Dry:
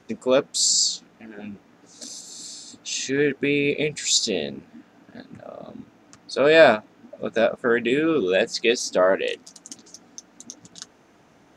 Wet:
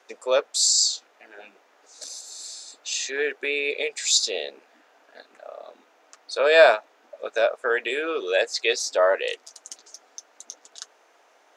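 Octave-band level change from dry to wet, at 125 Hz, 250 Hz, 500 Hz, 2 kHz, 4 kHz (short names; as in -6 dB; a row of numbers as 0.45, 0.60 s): under -35 dB, -15.5 dB, -2.0 dB, 0.0 dB, 0.0 dB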